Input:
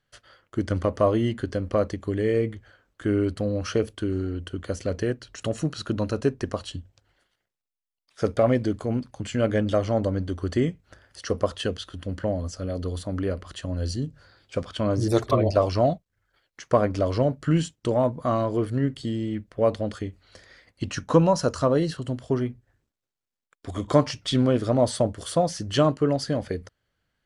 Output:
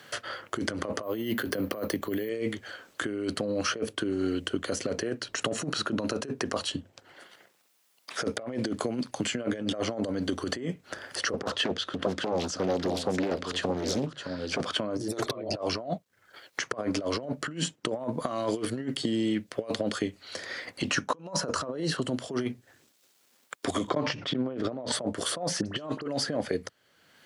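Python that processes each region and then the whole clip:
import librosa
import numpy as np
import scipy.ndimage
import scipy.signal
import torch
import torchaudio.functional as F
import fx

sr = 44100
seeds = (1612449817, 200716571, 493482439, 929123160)

y = fx.chain(x, sr, fx.resample_bad(factor=3, down='filtered', up='hold'),
    fx.band_squash(depth_pct=40), at=(1.03, 2.29))
y = fx.chain(y, sr, fx.lowpass(hz=6800.0, slope=12),
    fx.echo_single(ms=615, db=-12.0),
    fx.doppler_dist(depth_ms=0.92), at=(11.33, 14.61))
y = fx.chain(y, sr, fx.auto_swell(attack_ms=196.0),
    fx.spacing_loss(db_at_10k=31),
    fx.sustainer(db_per_s=58.0), at=(23.89, 24.92))
y = fx.chain(y, sr, fx.high_shelf(hz=8100.0, db=-9.5),
    fx.dispersion(late='highs', ms=52.0, hz=2500.0), at=(25.61, 26.08))
y = fx.over_compress(y, sr, threshold_db=-28.0, ratio=-0.5)
y = scipy.signal.sosfilt(scipy.signal.butter(2, 230.0, 'highpass', fs=sr, output='sos'), y)
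y = fx.band_squash(y, sr, depth_pct=70)
y = F.gain(torch.from_numpy(y), 2.0).numpy()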